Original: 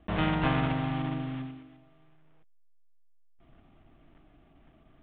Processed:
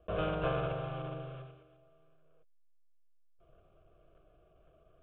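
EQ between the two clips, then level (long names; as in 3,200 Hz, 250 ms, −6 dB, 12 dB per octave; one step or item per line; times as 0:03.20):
low-pass filter 2,800 Hz 12 dB per octave
parametric band 500 Hz +10 dB 1.2 octaves
phaser with its sweep stopped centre 1,300 Hz, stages 8
−5.0 dB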